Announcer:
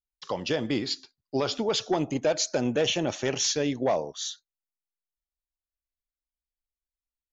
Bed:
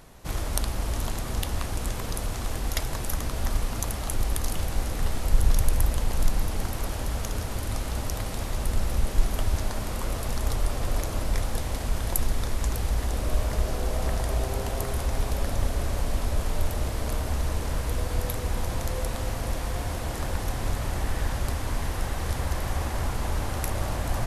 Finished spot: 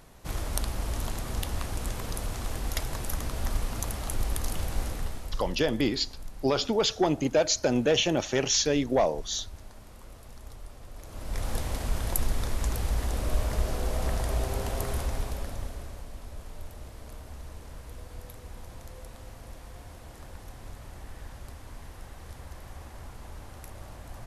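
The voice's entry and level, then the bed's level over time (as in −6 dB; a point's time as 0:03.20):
5.10 s, +1.5 dB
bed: 0:04.87 −3 dB
0:05.61 −18.5 dB
0:10.95 −18.5 dB
0:11.50 −2 dB
0:14.96 −2 dB
0:16.09 −15.5 dB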